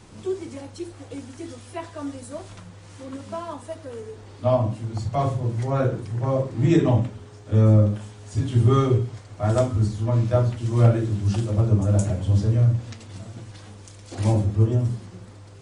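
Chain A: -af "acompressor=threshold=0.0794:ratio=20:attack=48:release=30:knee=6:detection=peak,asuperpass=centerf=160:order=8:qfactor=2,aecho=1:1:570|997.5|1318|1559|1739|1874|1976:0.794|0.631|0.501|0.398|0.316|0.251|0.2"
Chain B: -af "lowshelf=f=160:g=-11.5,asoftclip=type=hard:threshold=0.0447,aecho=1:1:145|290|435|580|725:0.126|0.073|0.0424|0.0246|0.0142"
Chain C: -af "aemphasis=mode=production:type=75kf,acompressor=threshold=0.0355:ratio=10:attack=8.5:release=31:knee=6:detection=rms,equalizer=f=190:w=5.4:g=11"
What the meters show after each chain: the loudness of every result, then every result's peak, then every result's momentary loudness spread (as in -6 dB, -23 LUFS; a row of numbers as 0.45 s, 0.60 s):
-29.5 LUFS, -33.0 LUFS, -32.0 LUFS; -15.0 dBFS, -25.0 dBFS, -16.0 dBFS; 9 LU, 13 LU, 8 LU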